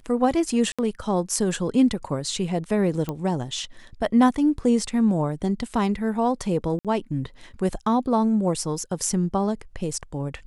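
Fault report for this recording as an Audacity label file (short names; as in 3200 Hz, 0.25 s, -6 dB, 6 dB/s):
0.720000	0.790000	gap 66 ms
3.090000	3.090000	pop -15 dBFS
6.790000	6.850000	gap 57 ms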